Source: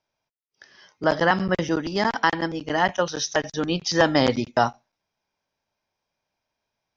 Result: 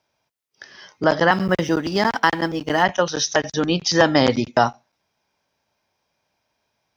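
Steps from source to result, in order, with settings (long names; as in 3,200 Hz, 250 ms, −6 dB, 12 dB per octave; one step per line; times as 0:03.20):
0:01.32–0:02.83: mu-law and A-law mismatch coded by A
high-pass filter 49 Hz
in parallel at +1.5 dB: downward compressor, threshold −31 dBFS, peak gain reduction 17.5 dB
on the sum: level +1.5 dB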